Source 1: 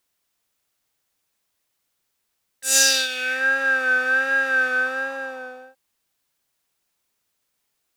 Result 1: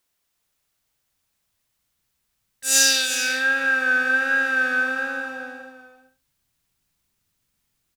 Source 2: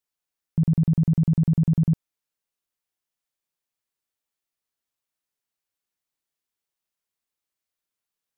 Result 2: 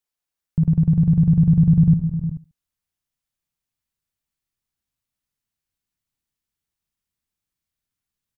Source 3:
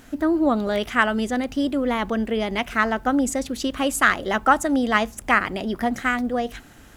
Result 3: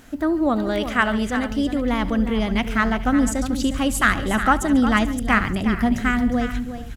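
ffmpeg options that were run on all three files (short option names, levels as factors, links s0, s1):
-filter_complex "[0:a]asplit=2[s0][s1];[s1]aecho=0:1:70|140:0.1|0.031[s2];[s0][s2]amix=inputs=2:normalize=0,asubboost=boost=5.5:cutoff=200,asplit=2[s3][s4];[s4]aecho=0:1:141|359|436:0.106|0.299|0.119[s5];[s3][s5]amix=inputs=2:normalize=0"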